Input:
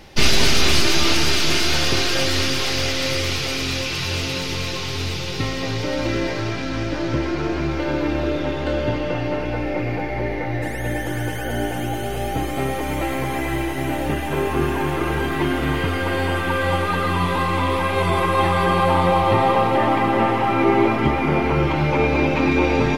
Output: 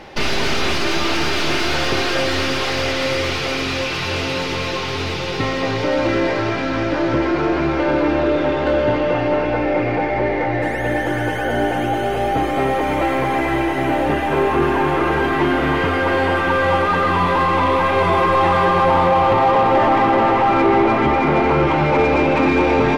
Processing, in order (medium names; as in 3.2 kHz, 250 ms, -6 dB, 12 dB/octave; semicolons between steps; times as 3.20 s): peak limiter -8.5 dBFS, peak gain reduction 6 dB; overdrive pedal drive 16 dB, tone 1 kHz, clips at -8.5 dBFS; trim +3 dB